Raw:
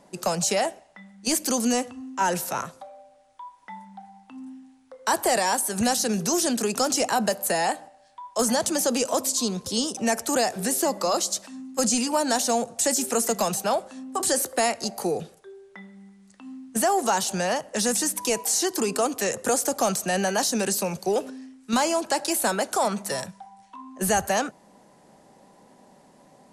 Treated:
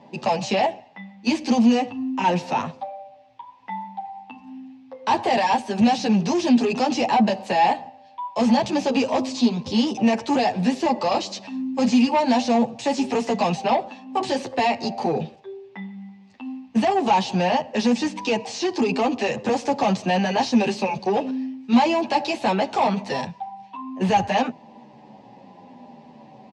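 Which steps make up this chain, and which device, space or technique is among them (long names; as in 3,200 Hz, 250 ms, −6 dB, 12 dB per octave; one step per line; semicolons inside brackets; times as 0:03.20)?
0:17.90–0:19.54: low-pass filter 8,900 Hz 24 dB per octave
barber-pole flanger into a guitar amplifier (barber-pole flanger 9.7 ms −0.73 Hz; soft clipping −25 dBFS, distortion −12 dB; loudspeaker in its box 88–4,600 Hz, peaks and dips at 120 Hz +7 dB, 240 Hz +8 dB, 850 Hz +9 dB, 1,400 Hz −10 dB, 2,600 Hz +7 dB)
low-shelf EQ 180 Hz +3.5 dB
level +7 dB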